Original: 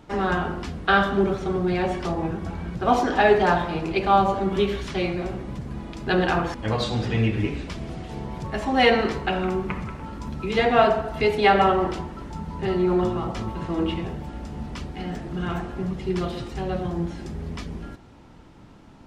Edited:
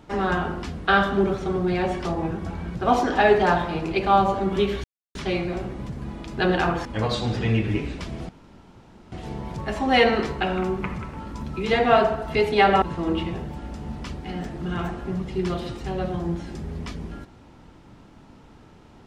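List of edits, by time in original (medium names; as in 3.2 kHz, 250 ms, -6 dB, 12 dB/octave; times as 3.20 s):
4.84 s: insert silence 0.31 s
7.98 s: insert room tone 0.83 s
11.68–13.53 s: delete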